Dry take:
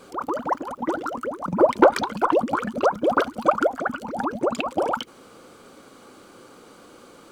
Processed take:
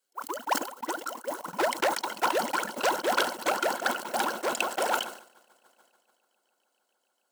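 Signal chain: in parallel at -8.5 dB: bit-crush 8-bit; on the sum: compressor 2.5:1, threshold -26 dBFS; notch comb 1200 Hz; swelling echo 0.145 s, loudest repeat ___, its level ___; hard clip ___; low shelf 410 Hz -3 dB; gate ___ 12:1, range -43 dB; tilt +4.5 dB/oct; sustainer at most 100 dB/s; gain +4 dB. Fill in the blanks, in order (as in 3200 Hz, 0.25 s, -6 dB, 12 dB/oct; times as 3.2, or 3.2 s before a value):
8, -15.5 dB, -21 dBFS, -27 dBFS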